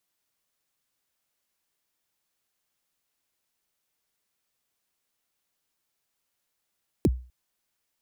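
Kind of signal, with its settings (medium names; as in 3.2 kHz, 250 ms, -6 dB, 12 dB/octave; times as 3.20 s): kick drum length 0.25 s, from 440 Hz, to 62 Hz, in 38 ms, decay 0.37 s, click on, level -14 dB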